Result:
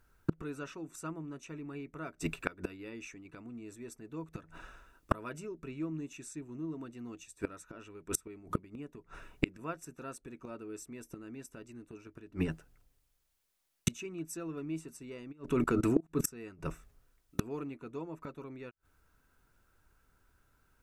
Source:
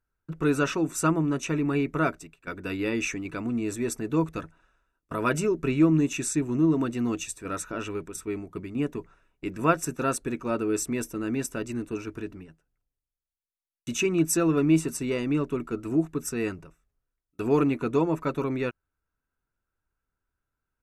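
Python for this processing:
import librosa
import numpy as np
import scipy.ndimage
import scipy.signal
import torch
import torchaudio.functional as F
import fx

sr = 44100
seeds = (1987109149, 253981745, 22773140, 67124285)

y = fx.level_steps(x, sr, step_db=21, at=(15.31, 16.24), fade=0.02)
y = fx.gate_flip(y, sr, shuts_db=-29.0, range_db=-32)
y = y * librosa.db_to_amplitude(14.5)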